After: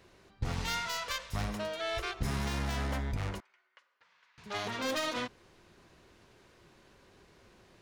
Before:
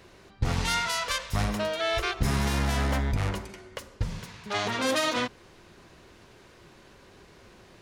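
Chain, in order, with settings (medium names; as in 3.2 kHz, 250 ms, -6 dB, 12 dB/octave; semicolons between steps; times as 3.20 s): tracing distortion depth 0.04 ms; 3.40–4.38 s: ladder band-pass 1.8 kHz, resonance 20%; trim -7.5 dB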